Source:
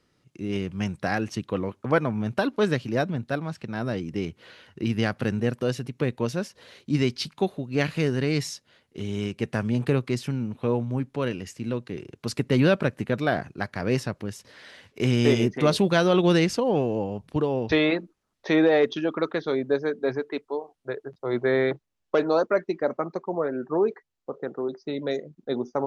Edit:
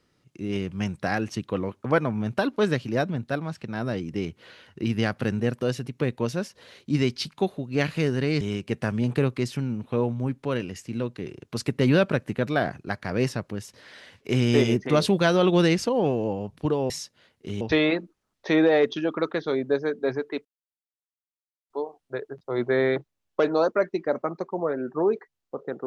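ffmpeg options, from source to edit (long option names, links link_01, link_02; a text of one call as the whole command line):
ffmpeg -i in.wav -filter_complex "[0:a]asplit=5[link_01][link_02][link_03][link_04][link_05];[link_01]atrim=end=8.412[link_06];[link_02]atrim=start=9.118:end=17.612[link_07];[link_03]atrim=start=8.408:end=9.122[link_08];[link_04]atrim=start=17.608:end=20.45,asetpts=PTS-STARTPTS,afade=type=out:start_time=2.838:duration=0.004:curve=hsin,apad=pad_dur=1.25[link_09];[link_05]atrim=start=20.45,asetpts=PTS-STARTPTS,afade=type=in:duration=0.004:curve=hsin[link_10];[link_06][link_07]acrossfade=duration=0.004:curve1=hsin:curve2=hsin[link_11];[link_11][link_08]acrossfade=duration=0.004:curve1=hsin:curve2=hsin[link_12];[link_09][link_10]concat=n=2:v=0:a=1[link_13];[link_12][link_13]acrossfade=duration=0.004:curve1=hsin:curve2=hsin" out.wav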